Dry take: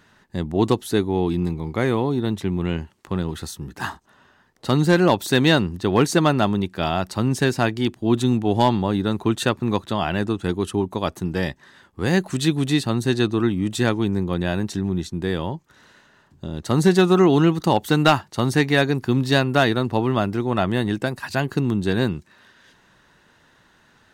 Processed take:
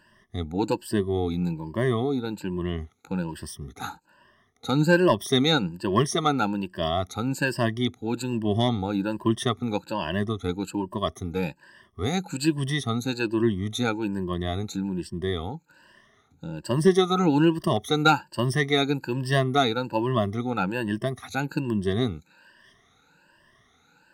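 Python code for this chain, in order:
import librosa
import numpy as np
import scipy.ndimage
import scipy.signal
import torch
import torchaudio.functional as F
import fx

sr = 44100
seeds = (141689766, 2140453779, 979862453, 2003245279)

y = fx.spec_ripple(x, sr, per_octave=1.3, drift_hz=1.2, depth_db=22)
y = y * librosa.db_to_amplitude(-9.0)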